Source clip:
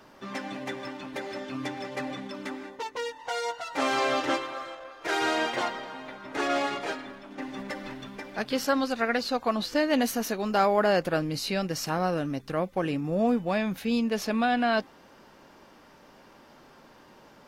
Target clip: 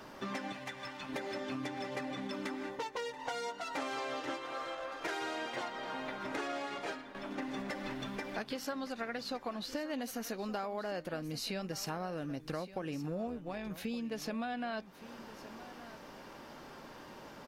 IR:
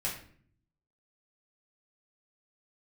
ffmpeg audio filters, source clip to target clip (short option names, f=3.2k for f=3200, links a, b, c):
-filter_complex "[0:a]asettb=1/sr,asplit=3[a][b][c];[a]atrim=end=6.524[d];[b]atrim=start=6.52:end=7.15,asetpts=PTS-STARTPTS,afade=t=in:d=0.004:c=qsin,afade=t=out:st=0.626:d=0.004:c=qsin,agate=range=-33dB:threshold=-32dB:ratio=3:detection=peak[e];[c]atrim=start=7.146[f];[d][e]acrossfade=d=0.004:c1=hsin:c2=qsin[g];[g][f]acrossfade=d=0.004:c1=qsin:c2=hsin,acompressor=threshold=-39dB:ratio=10,asettb=1/sr,asplit=3[h][i][j];[h]atrim=end=0.524[k];[i]atrim=start=0.52:end=1.09,asetpts=PTS-STARTPTS,afade=t=in:d=0.004:c=qsin,afade=t=out:st=0.566:d=0.004:c=qsin,equalizer=f=340:w=0.85:g=-12[l];[j]atrim=start=1.086[m];[k][l]acrossfade=d=0.004:c1=hsin:c2=qsin[n];[n][m]acrossfade=d=0.004:c1=qsin:c2=hsin,asettb=1/sr,asplit=3[o][p][q];[o]atrim=end=13.274[r];[p]atrim=start=13.27:end=13.71,asetpts=PTS-STARTPTS,afade=t=in:d=0.004:c=qsin,afade=t=out:st=0.436:d=0.004:c=qsin,tremolo=f=170:d=0.519[s];[q]atrim=start=13.706[t];[r][s]acrossfade=d=0.004:c1=hsin:c2=qsin[u];[u][t]acrossfade=d=0.004:c1=qsin:c2=hsin,aecho=1:1:1168:0.168,volume=3dB"